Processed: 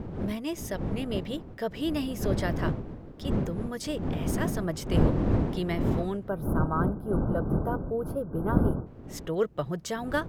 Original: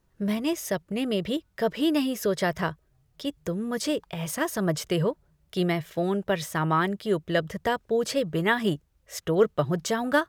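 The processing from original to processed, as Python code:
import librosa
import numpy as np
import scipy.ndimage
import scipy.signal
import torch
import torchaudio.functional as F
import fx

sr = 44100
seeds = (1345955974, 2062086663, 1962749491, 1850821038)

y = fx.dmg_wind(x, sr, seeds[0], corner_hz=250.0, level_db=-24.0)
y = fx.spec_box(y, sr, start_s=6.29, length_s=2.57, low_hz=1600.0, high_hz=9700.0, gain_db=-25)
y = y * 10.0 ** (-6.0 / 20.0)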